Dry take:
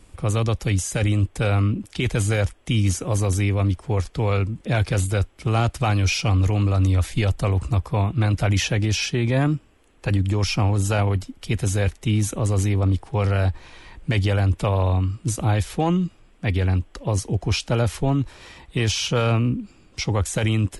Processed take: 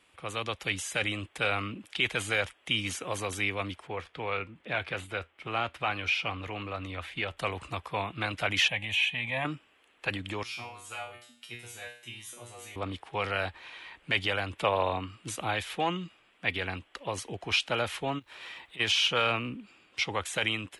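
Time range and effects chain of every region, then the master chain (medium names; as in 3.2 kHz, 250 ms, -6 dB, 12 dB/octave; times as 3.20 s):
3.87–7.37 s: tone controls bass 0 dB, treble -11 dB + feedback comb 82 Hz, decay 0.18 s, mix 40%
8.68–9.45 s: static phaser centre 1.4 kHz, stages 6 + de-hum 275.9 Hz, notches 17
10.43–12.76 s: treble shelf 8.6 kHz +11.5 dB + feedback comb 120 Hz, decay 0.43 s, mix 100% + tape noise reduction on one side only encoder only
14.62–15.07 s: peaking EQ 480 Hz +4.5 dB 2.9 oct + tape noise reduction on one side only decoder only
18.18–18.79 s: compression, threshold -36 dBFS + crackle 490 per s -58 dBFS
whole clip: high-pass 1.4 kHz 6 dB/octave; resonant high shelf 4.2 kHz -8.5 dB, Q 1.5; level rider gain up to 4 dB; trim -2.5 dB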